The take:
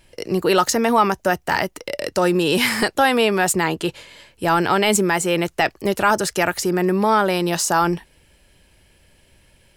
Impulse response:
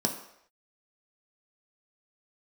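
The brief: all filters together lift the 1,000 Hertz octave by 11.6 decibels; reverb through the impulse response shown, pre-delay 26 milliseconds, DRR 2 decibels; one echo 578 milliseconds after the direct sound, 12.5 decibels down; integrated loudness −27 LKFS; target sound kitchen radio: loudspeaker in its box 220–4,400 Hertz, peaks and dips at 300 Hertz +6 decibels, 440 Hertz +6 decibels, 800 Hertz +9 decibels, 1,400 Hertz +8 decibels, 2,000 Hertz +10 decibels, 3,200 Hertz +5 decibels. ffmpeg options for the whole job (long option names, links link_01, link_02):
-filter_complex "[0:a]equalizer=frequency=1000:width_type=o:gain=5.5,aecho=1:1:578:0.237,asplit=2[link_01][link_02];[1:a]atrim=start_sample=2205,adelay=26[link_03];[link_02][link_03]afir=irnorm=-1:irlink=0,volume=-9.5dB[link_04];[link_01][link_04]amix=inputs=2:normalize=0,highpass=220,equalizer=frequency=300:width_type=q:width=4:gain=6,equalizer=frequency=440:width_type=q:width=4:gain=6,equalizer=frequency=800:width_type=q:width=4:gain=9,equalizer=frequency=1400:width_type=q:width=4:gain=8,equalizer=frequency=2000:width_type=q:width=4:gain=10,equalizer=frequency=3200:width_type=q:width=4:gain=5,lowpass=frequency=4400:width=0.5412,lowpass=frequency=4400:width=1.3066,volume=-19dB"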